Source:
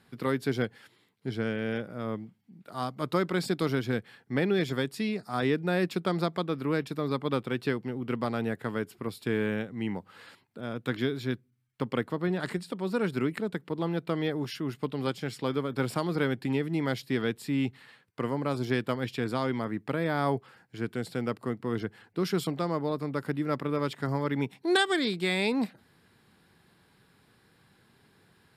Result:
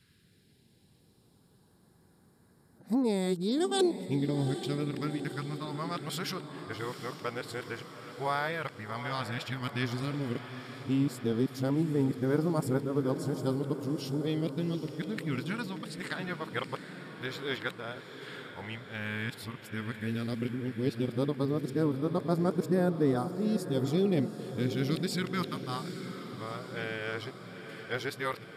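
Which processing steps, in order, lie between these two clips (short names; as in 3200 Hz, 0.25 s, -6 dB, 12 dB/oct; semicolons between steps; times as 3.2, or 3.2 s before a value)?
whole clip reversed; phaser stages 2, 0.1 Hz, lowest notch 190–2700 Hz; diffused feedback echo 0.803 s, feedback 60%, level -10 dB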